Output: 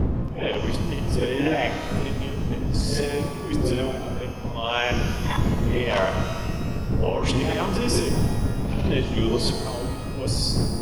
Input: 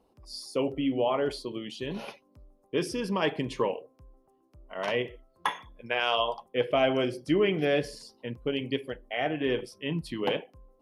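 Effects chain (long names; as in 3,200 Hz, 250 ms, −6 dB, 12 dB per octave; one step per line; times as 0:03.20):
played backwards from end to start
wind on the microphone 150 Hz −25 dBFS
mains-hum notches 50/100/150/200/250/300 Hz
compressor whose output falls as the input rises −33 dBFS, ratio −1
reverb with rising layers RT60 1.8 s, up +12 semitones, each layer −8 dB, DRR 5 dB
level +6.5 dB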